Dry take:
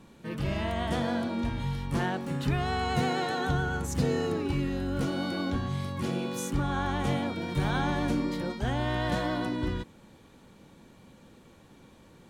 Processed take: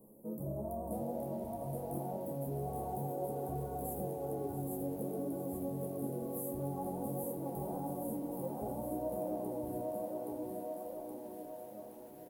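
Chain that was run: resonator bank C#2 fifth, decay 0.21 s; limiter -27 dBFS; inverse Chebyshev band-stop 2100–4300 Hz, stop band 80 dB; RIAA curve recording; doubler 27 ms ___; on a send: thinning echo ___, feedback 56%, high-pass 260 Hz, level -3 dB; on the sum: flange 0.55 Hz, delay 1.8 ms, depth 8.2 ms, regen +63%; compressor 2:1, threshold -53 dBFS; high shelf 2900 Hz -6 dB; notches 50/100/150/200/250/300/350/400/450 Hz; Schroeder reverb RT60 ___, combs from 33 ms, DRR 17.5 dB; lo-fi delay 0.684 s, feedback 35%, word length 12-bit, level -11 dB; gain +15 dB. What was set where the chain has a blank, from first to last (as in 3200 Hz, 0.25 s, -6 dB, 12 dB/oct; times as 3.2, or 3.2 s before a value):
-11.5 dB, 0.822 s, 1.8 s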